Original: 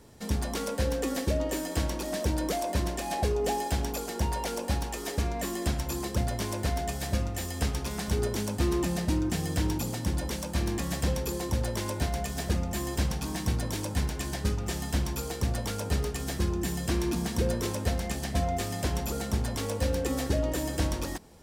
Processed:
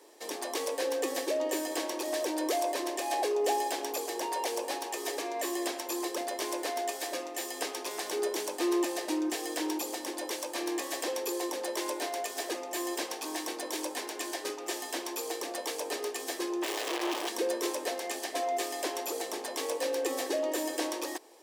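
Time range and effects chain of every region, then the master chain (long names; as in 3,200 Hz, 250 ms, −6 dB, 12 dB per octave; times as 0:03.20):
0:16.62–0:17.29: sign of each sample alone + parametric band 3,100 Hz +4.5 dB 0.67 octaves + mid-hump overdrive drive 9 dB, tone 3,000 Hz, clips at −23.5 dBFS
whole clip: elliptic high-pass filter 320 Hz, stop band 50 dB; notch filter 1,400 Hz, Q 7.3; level +1.5 dB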